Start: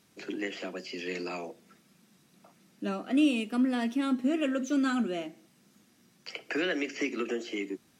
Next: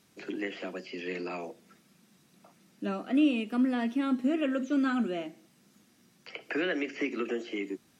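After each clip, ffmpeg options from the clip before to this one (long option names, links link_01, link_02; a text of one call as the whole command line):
ffmpeg -i in.wav -filter_complex "[0:a]acrossover=split=3400[link_01][link_02];[link_02]acompressor=threshold=-57dB:ratio=4:attack=1:release=60[link_03];[link_01][link_03]amix=inputs=2:normalize=0" out.wav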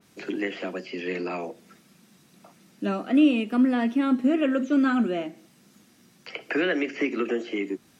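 ffmpeg -i in.wav -af "adynamicequalizer=threshold=0.00316:dfrequency=2700:dqfactor=0.7:tfrequency=2700:tqfactor=0.7:attack=5:release=100:ratio=0.375:range=2:mode=cutabove:tftype=highshelf,volume=6dB" out.wav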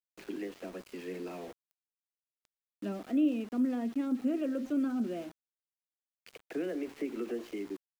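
ffmpeg -i in.wav -filter_complex "[0:a]acrossover=split=490|660[link_01][link_02][link_03];[link_03]acompressor=threshold=-42dB:ratio=6[link_04];[link_01][link_02][link_04]amix=inputs=3:normalize=0,aeval=exprs='val(0)*gte(abs(val(0)),0.0112)':channel_layout=same,volume=-9dB" out.wav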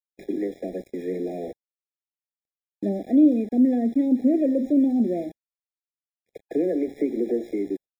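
ffmpeg -i in.wav -af "agate=range=-28dB:threshold=-51dB:ratio=16:detection=peak,lowshelf=frequency=770:width_type=q:width=1.5:gain=7,afftfilt=real='re*eq(mod(floor(b*sr/1024/820),2),0)':imag='im*eq(mod(floor(b*sr/1024/820),2),0)':win_size=1024:overlap=0.75,volume=3.5dB" out.wav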